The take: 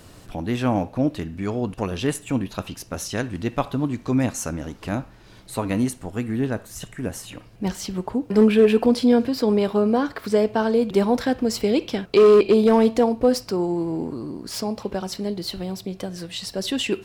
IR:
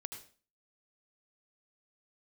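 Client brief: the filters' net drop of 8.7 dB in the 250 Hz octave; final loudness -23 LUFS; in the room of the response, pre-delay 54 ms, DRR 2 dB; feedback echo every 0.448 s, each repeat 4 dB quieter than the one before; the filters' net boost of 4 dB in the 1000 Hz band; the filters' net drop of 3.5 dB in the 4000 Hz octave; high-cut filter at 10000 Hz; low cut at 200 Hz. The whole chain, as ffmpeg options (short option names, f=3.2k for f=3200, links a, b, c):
-filter_complex "[0:a]highpass=200,lowpass=10k,equalizer=f=250:t=o:g=-8.5,equalizer=f=1k:t=o:g=6,equalizer=f=4k:t=o:g=-5,aecho=1:1:448|896|1344|1792|2240|2688|3136|3584|4032:0.631|0.398|0.25|0.158|0.0994|0.0626|0.0394|0.0249|0.0157,asplit=2[a][b];[1:a]atrim=start_sample=2205,adelay=54[c];[b][c]afir=irnorm=-1:irlink=0,volume=0.5dB[d];[a][d]amix=inputs=2:normalize=0,volume=-2dB"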